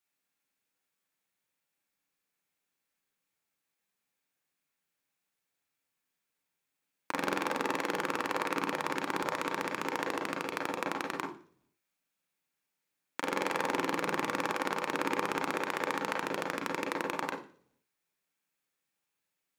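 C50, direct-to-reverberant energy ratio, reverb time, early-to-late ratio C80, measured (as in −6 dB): 7.5 dB, 0.5 dB, 0.50 s, 13.5 dB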